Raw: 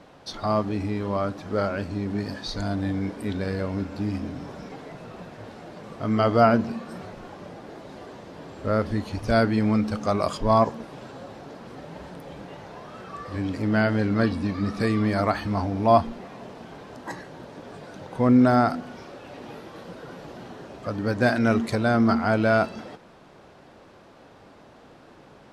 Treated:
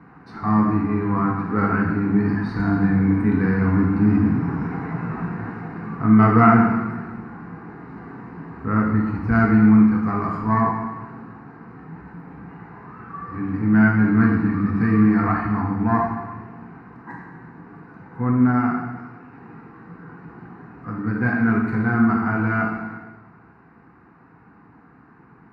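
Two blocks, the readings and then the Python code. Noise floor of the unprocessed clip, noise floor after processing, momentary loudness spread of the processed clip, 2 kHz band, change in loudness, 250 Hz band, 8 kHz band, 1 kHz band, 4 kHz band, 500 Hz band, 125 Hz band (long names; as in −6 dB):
−51 dBFS, −50 dBFS, 22 LU, +4.5 dB, +4.5 dB, +7.0 dB, can't be measured, +2.5 dB, below −15 dB, −4.5 dB, +6.5 dB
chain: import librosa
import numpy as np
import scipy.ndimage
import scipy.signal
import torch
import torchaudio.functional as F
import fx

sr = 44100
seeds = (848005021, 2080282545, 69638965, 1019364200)

y = fx.self_delay(x, sr, depth_ms=0.083)
y = scipy.signal.sosfilt(scipy.signal.butter(2, 85.0, 'highpass', fs=sr, output='sos'), y)
y = fx.rider(y, sr, range_db=10, speed_s=2.0)
y = fx.air_absorb(y, sr, metres=480.0)
y = fx.fixed_phaser(y, sr, hz=1400.0, stages=4)
y = fx.rev_plate(y, sr, seeds[0], rt60_s=1.3, hf_ratio=0.95, predelay_ms=0, drr_db=-1.5)
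y = y * 10.0 ** (5.0 / 20.0)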